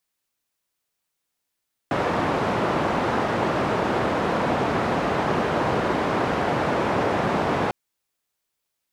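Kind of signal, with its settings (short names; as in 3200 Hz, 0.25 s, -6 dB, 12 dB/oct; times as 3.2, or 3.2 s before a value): noise band 100–890 Hz, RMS -23 dBFS 5.80 s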